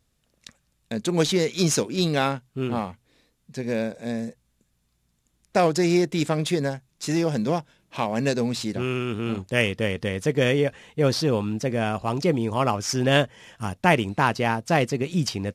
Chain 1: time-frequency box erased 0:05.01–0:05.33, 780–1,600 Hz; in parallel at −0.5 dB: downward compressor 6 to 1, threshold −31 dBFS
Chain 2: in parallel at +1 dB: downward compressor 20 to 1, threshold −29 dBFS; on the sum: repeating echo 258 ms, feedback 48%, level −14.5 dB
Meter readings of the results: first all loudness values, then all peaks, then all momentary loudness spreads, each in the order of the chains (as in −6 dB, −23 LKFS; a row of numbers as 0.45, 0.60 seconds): −22.5, −22.0 LKFS; −2.0, −2.0 dBFS; 8, 8 LU